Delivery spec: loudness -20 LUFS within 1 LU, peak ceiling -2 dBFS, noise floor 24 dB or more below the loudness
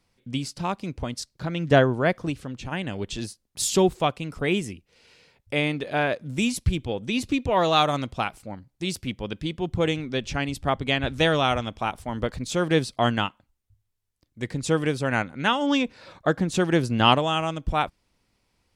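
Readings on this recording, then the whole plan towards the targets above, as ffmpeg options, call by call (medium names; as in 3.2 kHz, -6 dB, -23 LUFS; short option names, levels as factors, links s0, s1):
loudness -25.5 LUFS; peak level -3.0 dBFS; loudness target -20.0 LUFS
-> -af "volume=1.88,alimiter=limit=0.794:level=0:latency=1"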